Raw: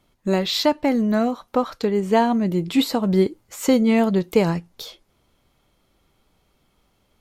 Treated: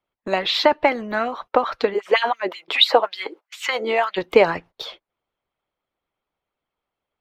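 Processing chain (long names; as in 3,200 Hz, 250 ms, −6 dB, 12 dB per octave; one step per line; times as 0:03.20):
harmonic and percussive parts rebalanced harmonic −13 dB
0:01.93–0:04.16: auto-filter high-pass sine 7.5 Hz → 1.2 Hz 350–3,600 Hz
noise gate −47 dBFS, range −21 dB
three-way crossover with the lows and the highs turned down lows −12 dB, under 420 Hz, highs −23 dB, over 3,600 Hz
boost into a limiter +11.5 dB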